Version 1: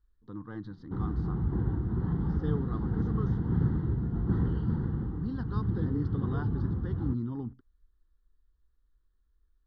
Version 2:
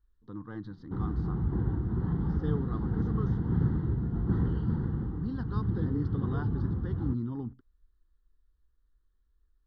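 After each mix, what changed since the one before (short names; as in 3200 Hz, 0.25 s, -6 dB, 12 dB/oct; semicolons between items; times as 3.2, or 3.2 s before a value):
none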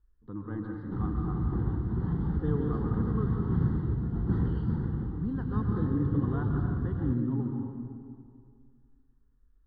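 speech: add air absorption 480 m; reverb: on, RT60 2.2 s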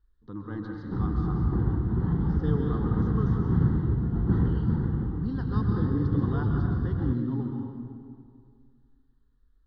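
speech: remove air absorption 480 m; background +4.0 dB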